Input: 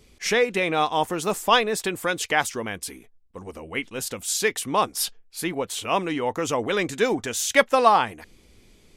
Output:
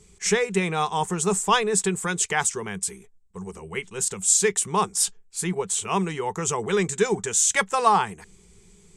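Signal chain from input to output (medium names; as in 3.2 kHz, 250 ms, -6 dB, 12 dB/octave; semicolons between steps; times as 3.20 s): FFT filter 130 Hz 0 dB, 190 Hz +10 dB, 270 Hz -19 dB, 400 Hz +6 dB, 560 Hz -12 dB, 860 Hz 0 dB, 2.8 kHz -4 dB, 4.8 kHz -3 dB, 7.9 kHz +12 dB, 14 kHz -15 dB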